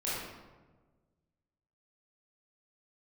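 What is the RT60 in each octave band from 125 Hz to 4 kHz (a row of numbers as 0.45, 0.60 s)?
2.0, 1.7, 1.5, 1.2, 0.95, 0.75 s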